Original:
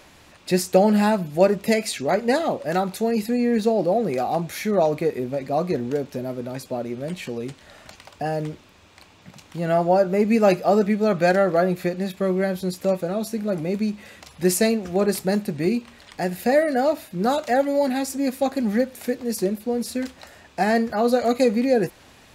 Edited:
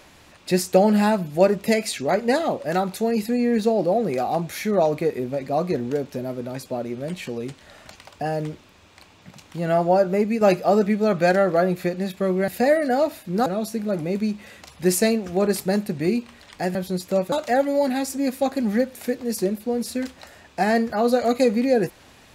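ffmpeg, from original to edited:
-filter_complex "[0:a]asplit=6[a][b][c][d][e][f];[a]atrim=end=10.41,asetpts=PTS-STARTPTS,afade=t=out:st=10.15:d=0.26:silence=0.398107[g];[b]atrim=start=10.41:end=12.482,asetpts=PTS-STARTPTS,afade=t=in:d=0.004:c=hsin:silence=0.398107[h];[c]atrim=start=16.338:end=17.322[i];[d]atrim=start=13.048:end=16.342[j];[e]atrim=start=12.478:end=13.052[k];[f]atrim=start=17.318[l];[g][h]concat=n=2:v=0:a=1[m];[m][i]acrossfade=d=0.004:c1=hsin:c2=hsin[n];[n][j]acrossfade=d=0.004:c1=hsin:c2=hsin[o];[o][k]acrossfade=d=0.004:c1=hsin:c2=hsin[p];[p][l]acrossfade=d=0.004:c1=hsin:c2=hsin"

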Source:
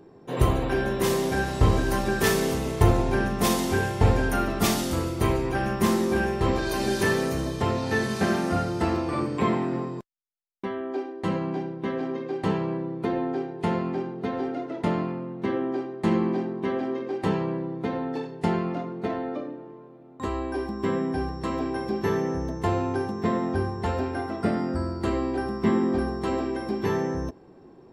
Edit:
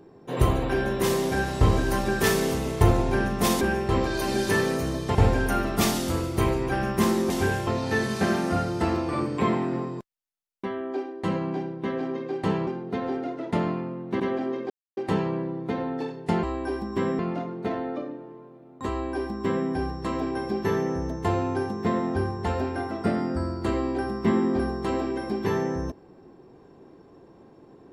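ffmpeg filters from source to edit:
-filter_complex "[0:a]asplit=10[a][b][c][d][e][f][g][h][i][j];[a]atrim=end=3.612[k];[b]atrim=start=6.128:end=7.672[l];[c]atrim=start=3.978:end=6.132[m];[d]atrim=start=3.608:end=3.982[n];[e]atrim=start=7.668:end=12.672[o];[f]atrim=start=13.978:end=15.512[p];[g]atrim=start=16.618:end=17.12,asetpts=PTS-STARTPTS,afade=t=out:st=0.498:d=0.004:c=hsin,apad=pad_dur=0.27[q];[h]atrim=start=17.12:end=18.582,asetpts=PTS-STARTPTS,afade=t=in:d=0.004:c=hsin[r];[i]atrim=start=20.298:end=21.062[s];[j]atrim=start=18.578[t];[k][l]acrossfade=d=0.004:c1=hsin:c2=hsin[u];[u][m]acrossfade=d=0.004:c1=hsin:c2=hsin[v];[v][n]acrossfade=d=0.004:c1=hsin:c2=hsin[w];[w][o]acrossfade=d=0.004:c1=hsin:c2=hsin[x];[x][p]acrossfade=d=0.004:c1=hsin:c2=hsin[y];[q][r]concat=n=2:v=0:a=1[z];[y][z]acrossfade=d=0.004:c1=hsin:c2=hsin[aa];[aa][s]acrossfade=d=0.004:c1=hsin:c2=hsin[ab];[ab][t]acrossfade=d=0.004:c1=hsin:c2=hsin"

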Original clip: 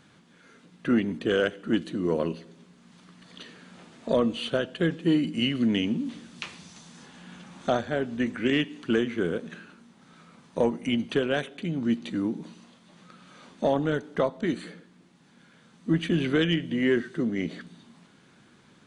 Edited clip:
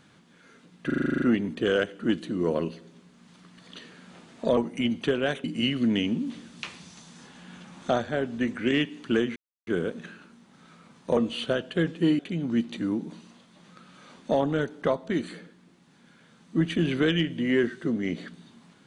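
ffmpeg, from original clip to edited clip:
-filter_complex "[0:a]asplit=15[a][b][c][d][e][f][g][h][i][j][k][l][m][n][o];[a]atrim=end=0.902[p];[b]atrim=start=0.858:end=0.902[q];[c]atrim=start=0.858:end=0.902[r];[d]atrim=start=0.858:end=0.902[s];[e]atrim=start=0.858:end=0.902[t];[f]atrim=start=0.858:end=0.902[u];[g]atrim=start=0.858:end=0.902[v];[h]atrim=start=0.858:end=0.902[w];[i]atrim=start=0.858:end=0.902[x];[j]atrim=start=0.858:end=4.212[y];[k]atrim=start=10.648:end=11.522[z];[l]atrim=start=5.228:end=9.15,asetpts=PTS-STARTPTS,afade=t=out:st=3.918:d=0.004:c=hsin,apad=pad_dur=0.31[aa];[m]atrim=start=9.15:end=10.652,asetpts=PTS-STARTPTS,afade=t=in:d=0.004:c=hsin[ab];[n]atrim=start=4.208:end=5.232[ac];[o]atrim=start=11.518[ad];[p][q]acrossfade=d=0.004:c1=hsin:c2=hsin[ae];[ae][r]acrossfade=d=0.004:c1=hsin:c2=hsin[af];[af][s]acrossfade=d=0.004:c1=hsin:c2=hsin[ag];[ag][t]acrossfade=d=0.004:c1=hsin:c2=hsin[ah];[ah][u]acrossfade=d=0.004:c1=hsin:c2=hsin[ai];[ai][v]acrossfade=d=0.004:c1=hsin:c2=hsin[aj];[aj][w]acrossfade=d=0.004:c1=hsin:c2=hsin[ak];[ak][x]acrossfade=d=0.004:c1=hsin:c2=hsin[al];[al][y]acrossfade=d=0.004:c1=hsin:c2=hsin[am];[am][z]acrossfade=d=0.004:c1=hsin:c2=hsin[an];[aa][ab]concat=n=2:v=0:a=1[ao];[an][ao]acrossfade=d=0.004:c1=hsin:c2=hsin[ap];[ap][ac]acrossfade=d=0.004:c1=hsin:c2=hsin[aq];[aq][ad]acrossfade=d=0.004:c1=hsin:c2=hsin"

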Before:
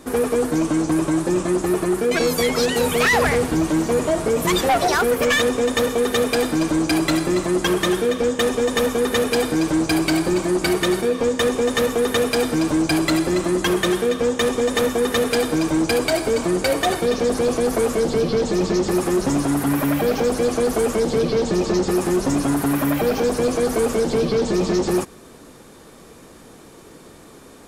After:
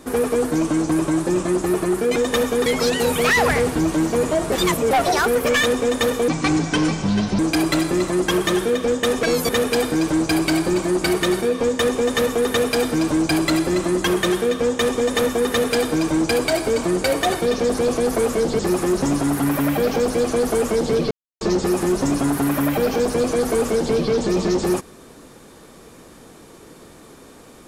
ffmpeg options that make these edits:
-filter_complex "[0:a]asplit=12[a][b][c][d][e][f][g][h][i][j][k][l];[a]atrim=end=2.162[m];[b]atrim=start=8.588:end=9.092[n];[c]atrim=start=2.418:end=4.282[o];[d]atrim=start=4.278:end=4.672,asetpts=PTS-STARTPTS,areverse[p];[e]atrim=start=4.668:end=6.044[q];[f]atrim=start=6.04:end=6.75,asetpts=PTS-STARTPTS,asetrate=28224,aresample=44100,atrim=end_sample=48923,asetpts=PTS-STARTPTS[r];[g]atrim=start=6.746:end=8.592[s];[h]atrim=start=2.158:end=2.422[t];[i]atrim=start=9.088:end=18.192[u];[j]atrim=start=18.828:end=21.35,asetpts=PTS-STARTPTS,afade=t=out:st=2.518:d=0.004:c=hsin[v];[k]atrim=start=21.35:end=21.65,asetpts=PTS-STARTPTS,volume=0[w];[l]atrim=start=21.65,asetpts=PTS-STARTPTS,afade=t=in:d=0.004:c=hsin[x];[m][n]acrossfade=d=0.004:c1=hsin:c2=hsin[y];[y][o]acrossfade=d=0.004:c1=hsin:c2=hsin[z];[z][p]acrossfade=d=0.004:c1=hsin:c2=hsin[aa];[aa][q]acrossfade=d=0.004:c1=hsin:c2=hsin[ab];[ab][r]acrossfade=d=0.004:c1=hsin:c2=hsin[ac];[ac][s]acrossfade=d=0.004:c1=hsin:c2=hsin[ad];[ad][t]acrossfade=d=0.004:c1=hsin:c2=hsin[ae];[ae][u]acrossfade=d=0.004:c1=hsin:c2=hsin[af];[v][w][x]concat=n=3:v=0:a=1[ag];[af][ag]acrossfade=d=0.004:c1=hsin:c2=hsin"

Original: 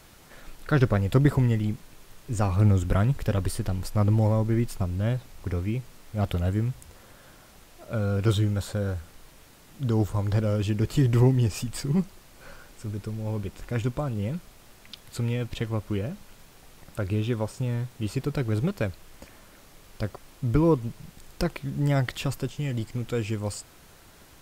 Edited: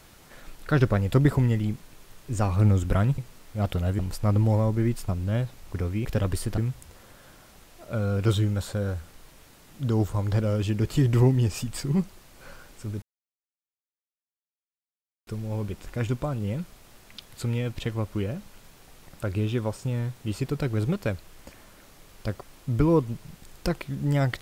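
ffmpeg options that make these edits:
-filter_complex "[0:a]asplit=6[a][b][c][d][e][f];[a]atrim=end=3.182[g];[b]atrim=start=5.768:end=6.582[h];[c]atrim=start=3.708:end=5.772[i];[d]atrim=start=3.178:end=3.712[j];[e]atrim=start=6.578:end=13.02,asetpts=PTS-STARTPTS,afade=t=out:st=6.438:d=0.004:c=hsin,apad=pad_dur=2.25[k];[f]atrim=start=13.02,asetpts=PTS-STARTPTS,afade=t=in:d=0.004:c=hsin[l];[g][h]acrossfade=d=0.004:c1=hsin:c2=hsin[m];[m][i]acrossfade=d=0.004:c1=hsin:c2=hsin[n];[n][j]acrossfade=d=0.004:c1=hsin:c2=hsin[o];[k][l]concat=n=2:v=0:a=1[p];[o][p]acrossfade=d=0.004:c1=hsin:c2=hsin"

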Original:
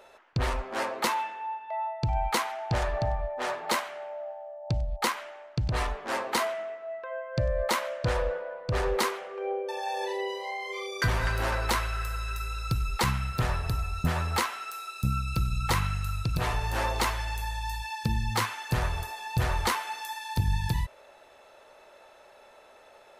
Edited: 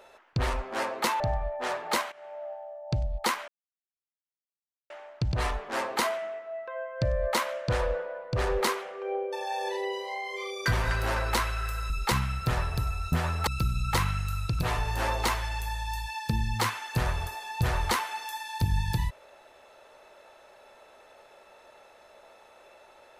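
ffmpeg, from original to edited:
-filter_complex "[0:a]asplit=6[a][b][c][d][e][f];[a]atrim=end=1.202[g];[b]atrim=start=2.978:end=3.9,asetpts=PTS-STARTPTS,afade=t=out:st=0.918:d=0.004:c=hsin:silence=0.158489[h];[c]atrim=start=3.9:end=5.26,asetpts=PTS-STARTPTS,afade=t=in:d=0.46:c=qsin:silence=0.158489,afade=t=out:st=1.356:d=0.004:c=hsin,apad=pad_dur=1.42[i];[d]atrim=start=5.26:end=12.262,asetpts=PTS-STARTPTS,afade=t=in:d=0.004:c=hsin[j];[e]atrim=start=12.818:end=14.392[k];[f]atrim=start=15.228[l];[h][i][j]concat=n=3:v=0:a=1[m];[g][m]acrossfade=d=0.004:c1=hsin:c2=hsin[n];[n][k]acrossfade=d=0.004:c1=hsin:c2=hsin[o];[o][l]acrossfade=d=0.004:c1=hsin:c2=hsin"

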